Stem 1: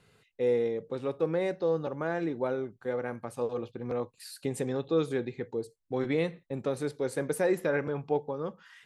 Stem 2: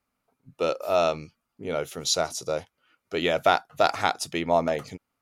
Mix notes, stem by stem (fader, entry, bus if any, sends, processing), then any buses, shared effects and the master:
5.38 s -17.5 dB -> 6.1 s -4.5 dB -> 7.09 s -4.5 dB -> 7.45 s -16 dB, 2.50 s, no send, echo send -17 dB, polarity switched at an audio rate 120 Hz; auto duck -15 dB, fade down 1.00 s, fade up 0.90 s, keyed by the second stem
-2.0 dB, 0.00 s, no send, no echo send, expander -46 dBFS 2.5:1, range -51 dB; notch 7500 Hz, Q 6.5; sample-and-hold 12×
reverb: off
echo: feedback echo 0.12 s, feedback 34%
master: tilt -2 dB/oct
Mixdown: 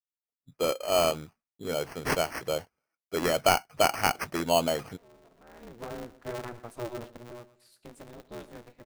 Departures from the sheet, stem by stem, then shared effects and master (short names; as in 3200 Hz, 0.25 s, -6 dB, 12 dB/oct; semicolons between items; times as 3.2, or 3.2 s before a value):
stem 1: entry 2.50 s -> 3.40 s; master: missing tilt -2 dB/oct